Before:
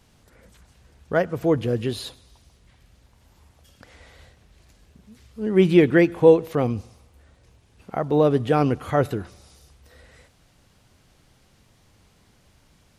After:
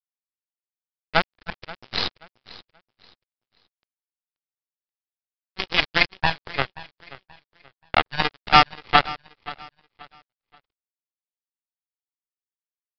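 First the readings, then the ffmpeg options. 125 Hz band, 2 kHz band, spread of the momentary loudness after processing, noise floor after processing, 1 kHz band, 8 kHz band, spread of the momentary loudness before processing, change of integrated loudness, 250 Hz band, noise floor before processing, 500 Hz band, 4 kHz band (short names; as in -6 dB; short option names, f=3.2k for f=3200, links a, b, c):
-10.5 dB, +8.0 dB, 21 LU, under -85 dBFS, +7.5 dB, n/a, 16 LU, -1.5 dB, -14.5 dB, -59 dBFS, -13.5 dB, +14.0 dB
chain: -filter_complex "[0:a]aemphasis=mode=production:type=bsi,afftfilt=real='re*(1-between(b*sr/4096,110,620))':imag='im*(1-between(b*sr/4096,110,620))':win_size=4096:overlap=0.75,equalizer=f=1.7k:w=6.8:g=-10.5,aecho=1:1:2.4:0.58,dynaudnorm=f=220:g=9:m=7dB,aeval=exprs='0.531*(cos(1*acos(clip(val(0)/0.531,-1,1)))-cos(1*PI/2))+0.00596*(cos(2*acos(clip(val(0)/0.531,-1,1)))-cos(2*PI/2))+0.188*(cos(3*acos(clip(val(0)/0.531,-1,1)))-cos(3*PI/2))+0.0299*(cos(4*acos(clip(val(0)/0.531,-1,1)))-cos(4*PI/2))':c=same,aeval=exprs='sgn(val(0))*max(abs(val(0))-0.00501,0)':c=same,apsyclip=20dB,asplit=2[a][b];[b]aecho=0:1:530|1060|1590:0.119|0.0357|0.0107[c];[a][c]amix=inputs=2:normalize=0,aresample=11025,aresample=44100,volume=-2.5dB"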